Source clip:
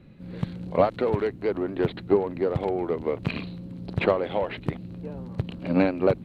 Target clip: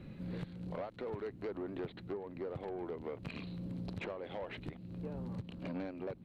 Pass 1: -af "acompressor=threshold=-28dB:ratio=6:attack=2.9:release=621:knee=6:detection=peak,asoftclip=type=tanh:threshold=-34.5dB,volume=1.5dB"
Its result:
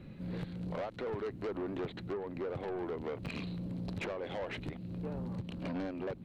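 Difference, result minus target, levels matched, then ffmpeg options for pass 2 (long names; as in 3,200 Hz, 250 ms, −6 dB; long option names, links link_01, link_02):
downward compressor: peak gain reduction −6.5 dB
-af "acompressor=threshold=-35.5dB:ratio=6:attack=2.9:release=621:knee=6:detection=peak,asoftclip=type=tanh:threshold=-34.5dB,volume=1.5dB"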